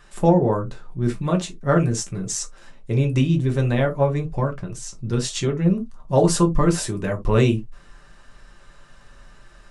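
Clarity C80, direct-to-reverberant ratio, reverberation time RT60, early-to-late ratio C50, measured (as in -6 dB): 31.0 dB, 2.0 dB, not exponential, 16.5 dB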